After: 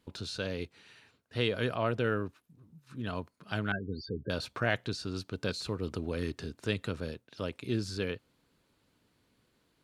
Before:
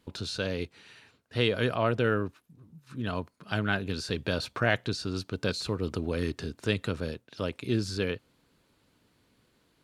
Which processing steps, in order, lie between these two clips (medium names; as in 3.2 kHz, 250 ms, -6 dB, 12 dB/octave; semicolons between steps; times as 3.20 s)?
3.72–4.30 s: loudest bins only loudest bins 16; trim -4 dB